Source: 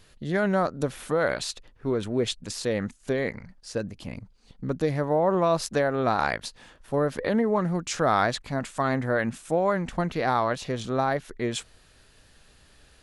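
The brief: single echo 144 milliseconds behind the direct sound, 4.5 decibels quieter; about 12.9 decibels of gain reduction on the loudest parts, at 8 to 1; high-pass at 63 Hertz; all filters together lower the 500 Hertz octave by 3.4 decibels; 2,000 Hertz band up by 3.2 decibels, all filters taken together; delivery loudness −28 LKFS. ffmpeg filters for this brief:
ffmpeg -i in.wav -af "highpass=63,equalizer=frequency=500:width_type=o:gain=-4.5,equalizer=frequency=2000:width_type=o:gain=4.5,acompressor=threshold=-32dB:ratio=8,aecho=1:1:144:0.596,volume=8dB" out.wav

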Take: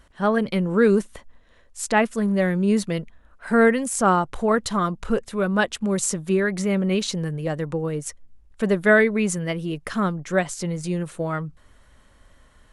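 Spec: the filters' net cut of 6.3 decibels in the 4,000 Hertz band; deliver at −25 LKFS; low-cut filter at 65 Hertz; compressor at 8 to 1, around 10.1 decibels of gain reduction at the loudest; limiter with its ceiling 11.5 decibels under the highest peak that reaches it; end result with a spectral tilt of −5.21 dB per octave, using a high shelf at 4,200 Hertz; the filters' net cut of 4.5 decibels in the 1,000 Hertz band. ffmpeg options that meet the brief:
ffmpeg -i in.wav -af "highpass=65,equalizer=frequency=1000:width_type=o:gain=-5.5,equalizer=frequency=4000:width_type=o:gain=-6,highshelf=frequency=4200:gain=-3.5,acompressor=threshold=-24dB:ratio=8,volume=7dB,alimiter=limit=-17dB:level=0:latency=1" out.wav

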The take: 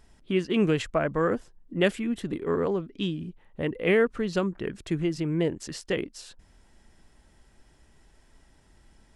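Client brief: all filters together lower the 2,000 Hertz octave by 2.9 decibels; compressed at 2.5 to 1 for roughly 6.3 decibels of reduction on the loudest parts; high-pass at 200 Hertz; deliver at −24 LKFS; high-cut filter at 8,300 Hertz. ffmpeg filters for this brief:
ffmpeg -i in.wav -af "highpass=200,lowpass=8300,equalizer=frequency=2000:width_type=o:gain=-3.5,acompressor=threshold=-28dB:ratio=2.5,volume=9dB" out.wav

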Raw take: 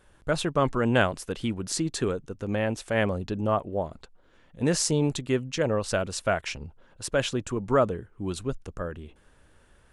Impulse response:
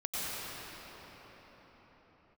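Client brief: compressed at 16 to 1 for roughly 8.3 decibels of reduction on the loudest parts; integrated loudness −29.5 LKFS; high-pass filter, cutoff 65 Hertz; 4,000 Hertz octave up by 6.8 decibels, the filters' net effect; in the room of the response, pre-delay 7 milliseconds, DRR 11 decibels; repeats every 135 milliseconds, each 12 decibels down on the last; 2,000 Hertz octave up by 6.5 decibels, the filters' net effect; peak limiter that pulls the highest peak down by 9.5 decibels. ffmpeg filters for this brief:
-filter_complex "[0:a]highpass=65,equalizer=frequency=2000:width_type=o:gain=7.5,equalizer=frequency=4000:width_type=o:gain=6.5,acompressor=threshold=-22dB:ratio=16,alimiter=limit=-18dB:level=0:latency=1,aecho=1:1:135|270|405:0.251|0.0628|0.0157,asplit=2[link_01][link_02];[1:a]atrim=start_sample=2205,adelay=7[link_03];[link_02][link_03]afir=irnorm=-1:irlink=0,volume=-18dB[link_04];[link_01][link_04]amix=inputs=2:normalize=0,volume=0.5dB"

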